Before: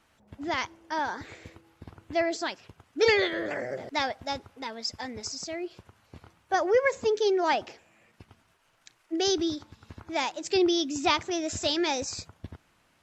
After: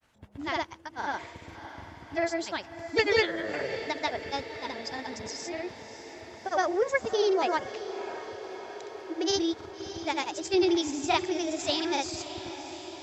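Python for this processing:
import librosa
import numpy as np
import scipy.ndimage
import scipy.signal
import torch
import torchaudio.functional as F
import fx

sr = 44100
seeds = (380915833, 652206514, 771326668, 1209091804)

y = fx.granulator(x, sr, seeds[0], grain_ms=100.0, per_s=20.0, spray_ms=100.0, spread_st=0)
y = fx.echo_diffused(y, sr, ms=621, feedback_pct=69, wet_db=-12.0)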